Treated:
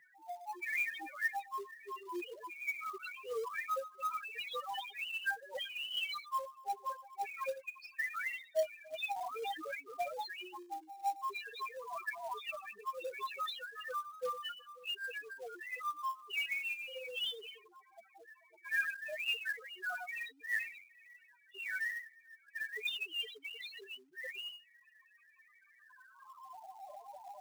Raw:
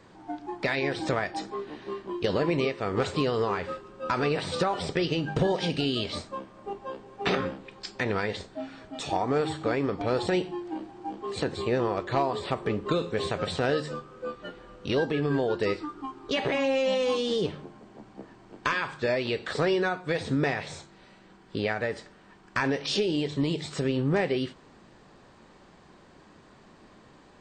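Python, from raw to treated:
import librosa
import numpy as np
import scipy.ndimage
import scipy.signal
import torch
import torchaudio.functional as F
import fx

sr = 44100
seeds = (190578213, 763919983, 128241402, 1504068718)

y = fx.hum_notches(x, sr, base_hz=60, count=9)
y = fx.echo_multitap(y, sr, ms=(54, 112), db=(-15.5, -16.0))
y = fx.over_compress(y, sr, threshold_db=-30.0, ratio=-0.5)
y = fx.filter_sweep_bandpass(y, sr, from_hz=2400.0, to_hz=790.0, start_s=25.62, end_s=26.68, q=2.3)
y = fx.spec_topn(y, sr, count=2)
y = fx.filter_sweep_highpass(y, sr, from_hz=150.0, to_hz=590.0, start_s=0.97, end_s=4.04, q=4.8)
y = fx.quant_float(y, sr, bits=2)
y = fx.pre_swell(y, sr, db_per_s=39.0, at=(9.14, 9.79))
y = F.gain(torch.from_numpy(y), 10.0).numpy()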